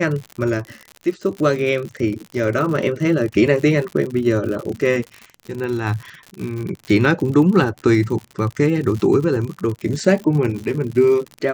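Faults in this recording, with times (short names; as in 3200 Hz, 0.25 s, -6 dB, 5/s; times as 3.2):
crackle 78/s -26 dBFS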